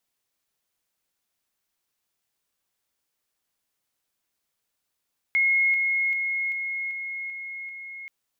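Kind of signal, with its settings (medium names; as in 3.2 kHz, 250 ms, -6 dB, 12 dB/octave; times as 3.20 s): level ladder 2.16 kHz -18 dBFS, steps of -3 dB, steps 7, 0.39 s 0.00 s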